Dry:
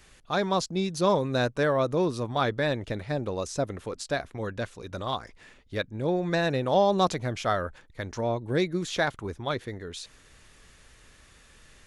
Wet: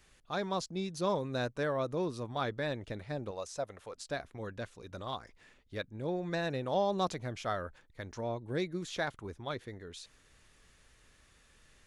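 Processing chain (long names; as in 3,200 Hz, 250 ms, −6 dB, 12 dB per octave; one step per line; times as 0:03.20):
0:03.31–0:03.98: low shelf with overshoot 440 Hz −7.5 dB, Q 1.5
level −8.5 dB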